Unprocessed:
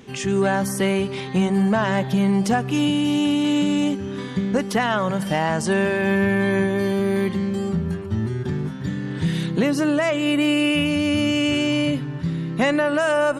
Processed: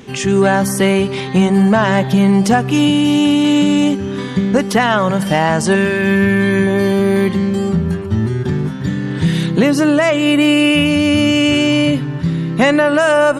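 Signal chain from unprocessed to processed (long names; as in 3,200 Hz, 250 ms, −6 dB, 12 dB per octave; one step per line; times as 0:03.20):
0:05.75–0:06.67: parametric band 720 Hz −11 dB 0.83 octaves
level +7.5 dB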